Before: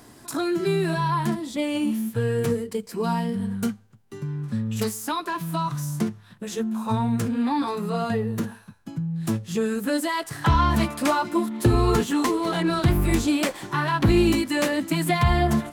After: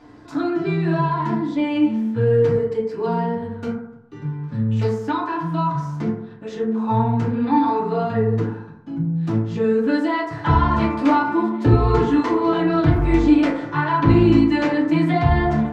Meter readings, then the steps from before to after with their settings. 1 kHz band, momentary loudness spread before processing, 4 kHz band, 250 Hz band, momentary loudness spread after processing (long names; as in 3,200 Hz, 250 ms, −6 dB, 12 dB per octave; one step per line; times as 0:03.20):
+4.5 dB, 9 LU, −4.5 dB, +5.0 dB, 11 LU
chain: high-frequency loss of the air 190 metres
feedback delay network reverb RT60 0.82 s, low-frequency decay 0.85×, high-frequency decay 0.3×, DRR −4.5 dB
level −2.5 dB